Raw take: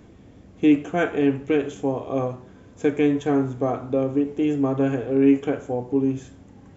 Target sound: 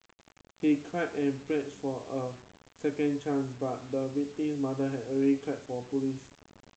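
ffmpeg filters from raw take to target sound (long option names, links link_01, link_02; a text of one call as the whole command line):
ffmpeg -i in.wav -af "highpass=78,aresample=16000,acrusher=bits=6:mix=0:aa=0.000001,aresample=44100,volume=-8.5dB" out.wav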